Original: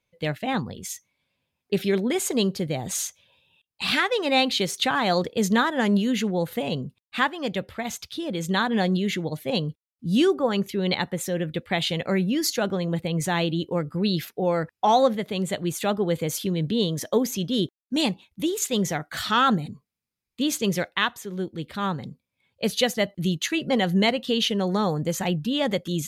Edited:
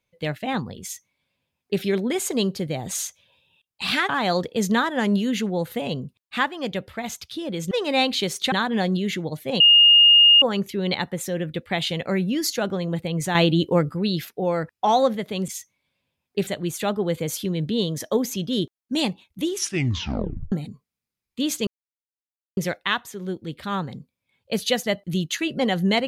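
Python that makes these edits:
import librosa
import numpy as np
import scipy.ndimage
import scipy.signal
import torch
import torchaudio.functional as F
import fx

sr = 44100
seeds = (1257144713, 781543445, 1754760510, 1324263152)

y = fx.edit(x, sr, fx.duplicate(start_s=0.83, length_s=0.99, to_s=15.48),
    fx.move(start_s=4.09, length_s=0.81, to_s=8.52),
    fx.bleep(start_s=9.6, length_s=0.82, hz=2840.0, db=-9.5),
    fx.clip_gain(start_s=13.35, length_s=0.59, db=6.5),
    fx.tape_stop(start_s=18.48, length_s=1.05),
    fx.insert_silence(at_s=20.68, length_s=0.9), tone=tone)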